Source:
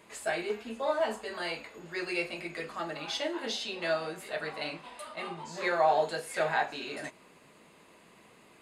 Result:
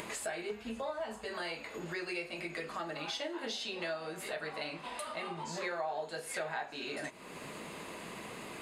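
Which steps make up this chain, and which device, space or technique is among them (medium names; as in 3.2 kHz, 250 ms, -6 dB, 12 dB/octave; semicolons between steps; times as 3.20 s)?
upward and downward compression (upward compressor, threshold -35 dBFS; compression 4:1, threshold -38 dBFS, peak gain reduction 15 dB); 0.51–1.26 s: resonant low shelf 200 Hz +8.5 dB, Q 1.5; trim +1.5 dB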